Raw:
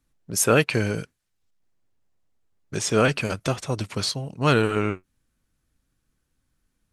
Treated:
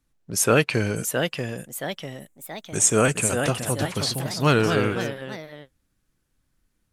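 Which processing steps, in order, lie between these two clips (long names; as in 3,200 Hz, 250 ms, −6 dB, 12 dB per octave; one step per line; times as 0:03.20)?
0:00.96–0:03.39: high shelf with overshoot 6,000 Hz +8 dB, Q 3
delay with pitch and tempo change per echo 719 ms, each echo +2 semitones, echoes 3, each echo −6 dB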